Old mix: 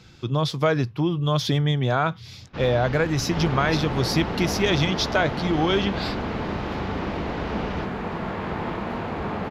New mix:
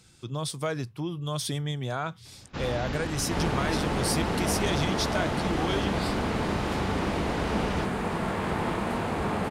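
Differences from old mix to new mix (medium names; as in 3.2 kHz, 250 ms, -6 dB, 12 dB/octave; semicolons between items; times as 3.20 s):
speech -9.5 dB; master: remove boxcar filter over 5 samples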